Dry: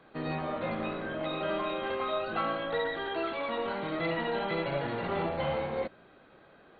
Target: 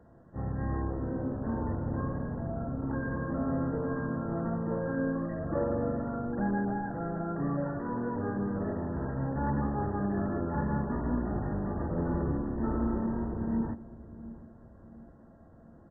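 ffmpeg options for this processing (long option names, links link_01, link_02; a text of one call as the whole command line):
ffmpeg -i in.wav -filter_complex "[0:a]lowshelf=frequency=200:gain=5,asplit=2[link_01][link_02];[link_02]adelay=304,lowpass=frequency=950:poles=1,volume=-15dB,asplit=2[link_03][link_04];[link_04]adelay=304,lowpass=frequency=950:poles=1,volume=0.52,asplit=2[link_05][link_06];[link_06]adelay=304,lowpass=frequency=950:poles=1,volume=0.52,asplit=2[link_07][link_08];[link_08]adelay=304,lowpass=frequency=950:poles=1,volume=0.52,asplit=2[link_09][link_10];[link_10]adelay=304,lowpass=frequency=950:poles=1,volume=0.52[link_11];[link_03][link_05][link_07][link_09][link_11]amix=inputs=5:normalize=0[link_12];[link_01][link_12]amix=inputs=2:normalize=0,asetrate=18846,aresample=44100" out.wav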